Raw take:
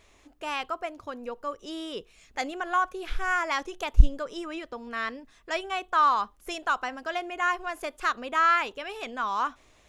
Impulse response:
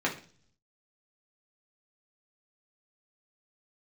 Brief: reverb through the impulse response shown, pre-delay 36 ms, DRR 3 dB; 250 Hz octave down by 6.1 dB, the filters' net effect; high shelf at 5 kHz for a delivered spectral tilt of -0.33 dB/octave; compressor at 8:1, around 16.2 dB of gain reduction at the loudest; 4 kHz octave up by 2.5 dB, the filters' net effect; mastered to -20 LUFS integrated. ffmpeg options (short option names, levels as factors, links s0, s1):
-filter_complex "[0:a]equalizer=f=250:t=o:g=-9,equalizer=f=4000:t=o:g=5.5,highshelf=f=5000:g=-5,acompressor=threshold=0.0562:ratio=8,asplit=2[s0][s1];[1:a]atrim=start_sample=2205,adelay=36[s2];[s1][s2]afir=irnorm=-1:irlink=0,volume=0.237[s3];[s0][s3]amix=inputs=2:normalize=0,volume=3.76"